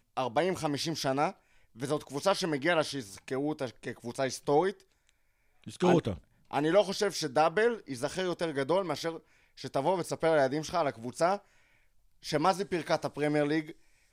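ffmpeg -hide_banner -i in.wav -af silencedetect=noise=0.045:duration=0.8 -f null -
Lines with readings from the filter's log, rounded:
silence_start: 4.70
silence_end: 5.81 | silence_duration: 1.12
silence_start: 11.35
silence_end: 12.29 | silence_duration: 0.94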